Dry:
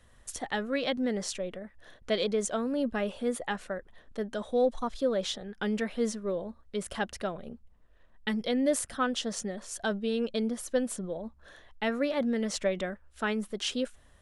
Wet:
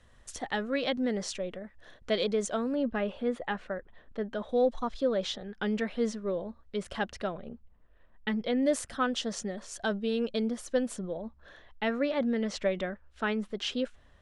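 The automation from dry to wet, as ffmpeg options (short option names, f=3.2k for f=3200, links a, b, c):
-af "asetnsamples=n=441:p=0,asendcmd='2.75 lowpass f 3200;4.49 lowpass f 5500;7.38 lowpass f 3200;8.63 lowpass f 7400;11.01 lowpass f 4600',lowpass=7.4k"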